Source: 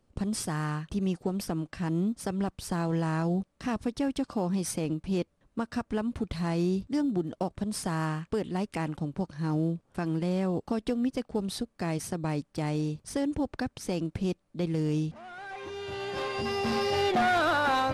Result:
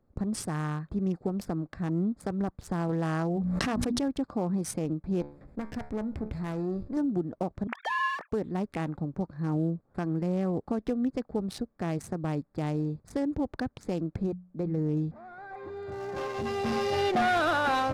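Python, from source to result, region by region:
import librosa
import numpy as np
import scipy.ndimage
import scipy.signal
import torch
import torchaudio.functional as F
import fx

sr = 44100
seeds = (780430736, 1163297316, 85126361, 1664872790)

y = fx.chain(x, sr, fx.low_shelf(hz=170.0, db=-6.0),
    fx.hum_notches(base_hz=60, count=5),
    fx.env_flatten(amount_pct=100), at=(2.89, 4.03))
y = fx.chain(y, sr, fx.lower_of_two(delay_ms=0.38),
    fx.comb_fb(f0_hz=72.0, decay_s=0.26, harmonics='all', damping=0.0, mix_pct=60),
    fx.env_flatten(amount_pct=50), at=(5.21, 6.97))
y = fx.chain(y, sr, fx.sine_speech(),
    fx.highpass(hz=360.0, slope=12),
    fx.tilt_shelf(db=-9.5, hz=630.0), at=(7.67, 8.32))
y = fx.chain(y, sr, fx.high_shelf(hz=2400.0, db=-7.0),
    fx.hum_notches(base_hz=60, count=3), at=(14.26, 14.97))
y = fx.wiener(y, sr, points=15)
y = fx.notch(y, sr, hz=960.0, q=19.0)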